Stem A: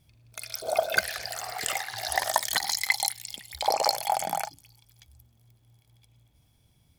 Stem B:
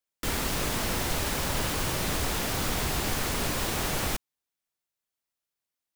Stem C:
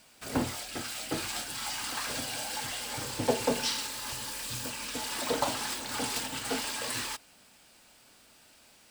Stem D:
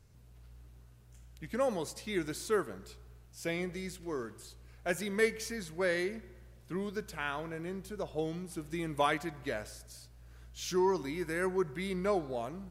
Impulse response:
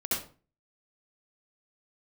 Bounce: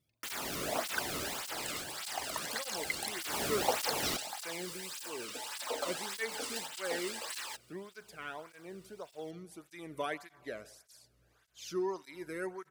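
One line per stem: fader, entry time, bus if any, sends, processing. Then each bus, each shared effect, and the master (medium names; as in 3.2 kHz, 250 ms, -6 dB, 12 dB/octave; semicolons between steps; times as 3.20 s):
-10.5 dB, 0.00 s, no send, reverb removal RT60 1.5 s
1.21 s -5 dB -> 1.99 s -14 dB -> 3.11 s -14 dB -> 3.34 s -2.5 dB, 0.00 s, no send, band-stop 500 Hz
-3.5 dB, 0.40 s, no send, high-pass 380 Hz 12 dB/octave
-4.0 dB, 1.00 s, no send, none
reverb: none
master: cancelling through-zero flanger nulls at 1.7 Hz, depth 1.3 ms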